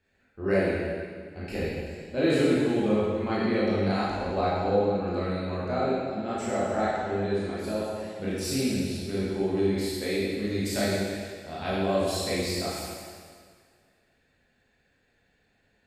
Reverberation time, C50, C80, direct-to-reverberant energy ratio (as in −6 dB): 1.9 s, −2.5 dB, −0.5 dB, −8.5 dB